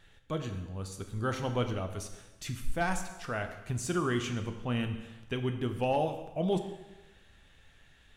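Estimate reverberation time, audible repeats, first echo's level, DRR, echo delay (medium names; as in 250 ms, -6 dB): 1.1 s, no echo, no echo, 6.0 dB, no echo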